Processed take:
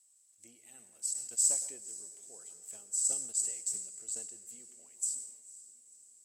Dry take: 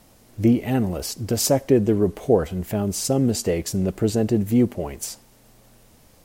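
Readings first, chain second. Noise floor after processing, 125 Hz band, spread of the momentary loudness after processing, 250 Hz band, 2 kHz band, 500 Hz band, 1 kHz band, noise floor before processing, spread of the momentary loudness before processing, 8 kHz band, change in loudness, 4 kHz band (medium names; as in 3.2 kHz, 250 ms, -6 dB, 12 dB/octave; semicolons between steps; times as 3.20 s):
-66 dBFS, under -40 dB, 21 LU, under -40 dB, under -20 dB, -35.5 dB, under -30 dB, -54 dBFS, 10 LU, -0.5 dB, -10.5 dB, -16.5 dB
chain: band-pass filter 7.9 kHz, Q 17; echo that smears into a reverb 512 ms, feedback 54%, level -15 dB; plate-style reverb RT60 1.8 s, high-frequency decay 0.3×, pre-delay 90 ms, DRR 10 dB; decay stretcher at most 75 dB/s; trim +7 dB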